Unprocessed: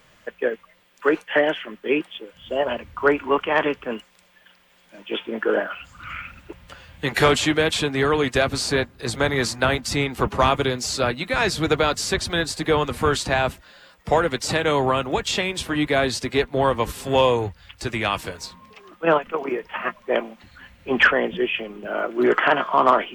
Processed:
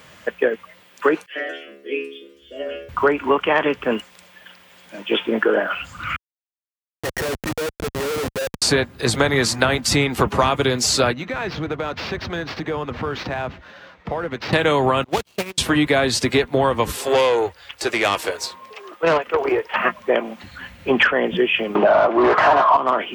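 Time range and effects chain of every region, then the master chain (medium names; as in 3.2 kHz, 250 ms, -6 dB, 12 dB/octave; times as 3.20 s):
1.26–2.89 s: peaking EQ 5.2 kHz +3.5 dB 0.43 oct + static phaser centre 360 Hz, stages 4 + inharmonic resonator 67 Hz, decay 0.77 s, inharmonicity 0.002
6.16–8.62 s: cascade formant filter e + Schmitt trigger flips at -34 dBFS
11.13–14.53 s: sample-rate reducer 10 kHz + distance through air 260 m + compression 3:1, threshold -35 dBFS
15.04–15.58 s: median filter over 25 samples + gate -27 dBFS, range -29 dB + tilt shelf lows -6.5 dB, about 1.5 kHz
16.96–19.76 s: resonant low shelf 280 Hz -12.5 dB, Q 1.5 + valve stage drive 17 dB, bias 0.45
21.75–22.77 s: overdrive pedal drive 28 dB, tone 1.3 kHz, clips at -5 dBFS + low-pass 5.2 kHz + high-order bell 820 Hz +9 dB 1.1 oct
whole clip: high-pass 66 Hz; compression 5:1, threshold -23 dBFS; trim +9 dB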